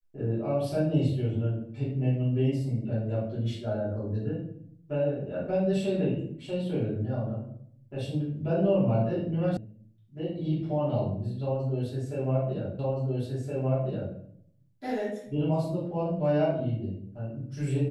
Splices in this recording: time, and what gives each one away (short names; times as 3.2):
9.57 sound cut off
12.79 repeat of the last 1.37 s